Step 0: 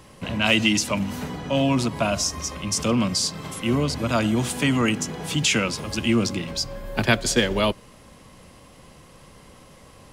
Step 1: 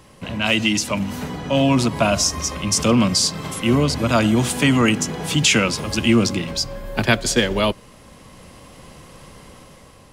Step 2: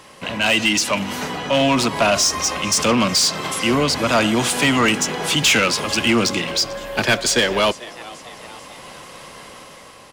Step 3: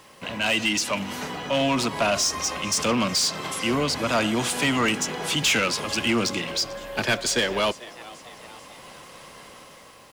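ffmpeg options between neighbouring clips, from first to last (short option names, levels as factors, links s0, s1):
-af "dynaudnorm=f=320:g=5:m=2"
-filter_complex "[0:a]asplit=5[s0][s1][s2][s3][s4];[s1]adelay=442,afreqshift=120,volume=0.0631[s5];[s2]adelay=884,afreqshift=240,volume=0.0347[s6];[s3]adelay=1326,afreqshift=360,volume=0.0191[s7];[s4]adelay=1768,afreqshift=480,volume=0.0105[s8];[s0][s5][s6][s7][s8]amix=inputs=5:normalize=0,asplit=2[s9][s10];[s10]highpass=f=720:p=1,volume=8.91,asoftclip=type=tanh:threshold=0.841[s11];[s9][s11]amix=inputs=2:normalize=0,lowpass=f=7000:p=1,volume=0.501,volume=0.562"
-af "acrusher=bits=8:mix=0:aa=0.000001,volume=0.501"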